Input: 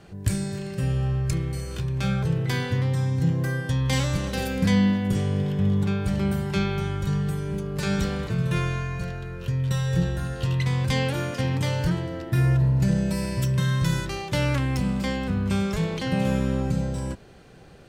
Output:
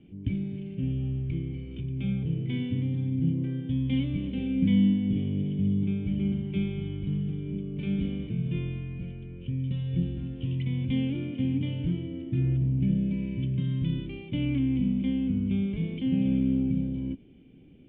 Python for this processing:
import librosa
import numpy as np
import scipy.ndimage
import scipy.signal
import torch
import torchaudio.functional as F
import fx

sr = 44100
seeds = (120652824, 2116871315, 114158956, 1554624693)

y = fx.formant_cascade(x, sr, vowel='i')
y = y * librosa.db_to_amplitude(5.5)